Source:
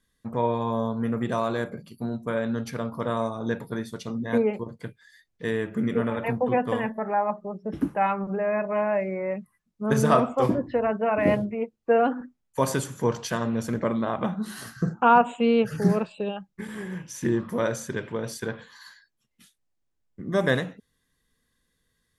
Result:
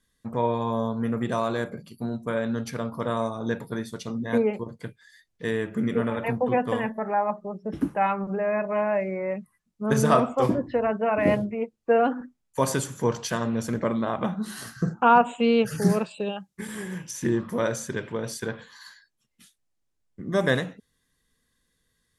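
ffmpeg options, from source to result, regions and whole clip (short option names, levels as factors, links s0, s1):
-filter_complex "[0:a]asettb=1/sr,asplit=3[s0][s1][s2];[s0]atrim=end=15.394[s3];[s1]atrim=start=15.39:end=17.11,asetpts=PTS-STARTPTS,afade=t=in:d=0.004:c=qsin,afade=t=out:st=1.716:d=0.004:c=qsin,highpass=41,highshelf=f=5200:g=10[s4];[s2]atrim=start=17.106[s5];[s3][s4]acrossfade=d=0.004:c1=hsin:c2=qsin[s6];[s6][s5]acrossfade=d=0.004:c1=qsin:c2=hsin,lowpass=11000,highshelf=f=6400:g=5.5"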